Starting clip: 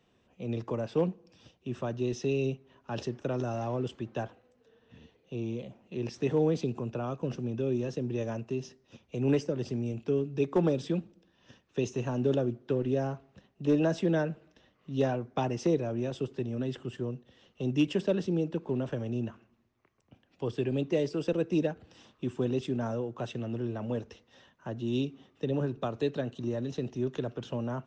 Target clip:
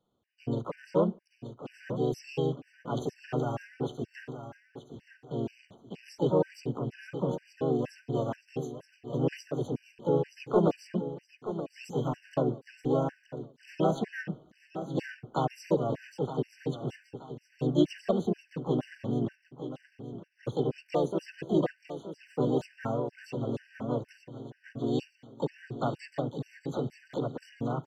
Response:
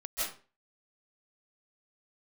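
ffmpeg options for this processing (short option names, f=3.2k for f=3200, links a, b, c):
-filter_complex "[0:a]agate=range=-11dB:threshold=-56dB:ratio=16:detection=peak,highshelf=f=3.6k:g=-6,asplit=2[a][b];[b]aecho=0:1:922|1844|2766|3688:0.282|0.0958|0.0326|0.0111[c];[a][c]amix=inputs=2:normalize=0,asplit=3[d][e][f];[e]asetrate=52444,aresample=44100,atempo=0.840896,volume=-2dB[g];[f]asetrate=88200,aresample=44100,atempo=0.5,volume=-11dB[h];[d][g][h]amix=inputs=3:normalize=0,afftfilt=real='re*gt(sin(2*PI*2.1*pts/sr)*(1-2*mod(floor(b*sr/1024/1500),2)),0)':imag='im*gt(sin(2*PI*2.1*pts/sr)*(1-2*mod(floor(b*sr/1024/1500),2)),0)':win_size=1024:overlap=0.75"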